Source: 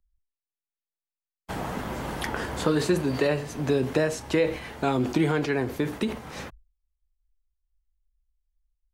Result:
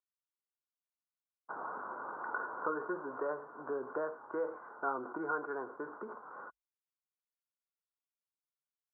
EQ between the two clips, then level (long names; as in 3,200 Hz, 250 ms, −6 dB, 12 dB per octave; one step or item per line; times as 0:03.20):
high-pass filter 1,100 Hz 6 dB per octave
Chebyshev low-pass with heavy ripple 1,500 Hz, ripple 6 dB
spectral tilt +4.5 dB per octave
+2.0 dB